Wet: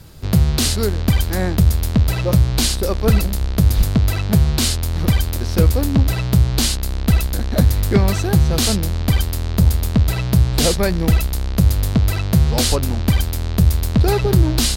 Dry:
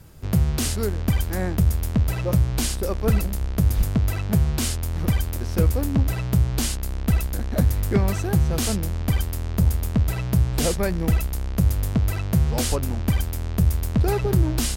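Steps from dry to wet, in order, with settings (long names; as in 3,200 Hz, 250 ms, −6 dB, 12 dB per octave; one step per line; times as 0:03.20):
parametric band 4,100 Hz +7.5 dB 0.67 octaves
level +5.5 dB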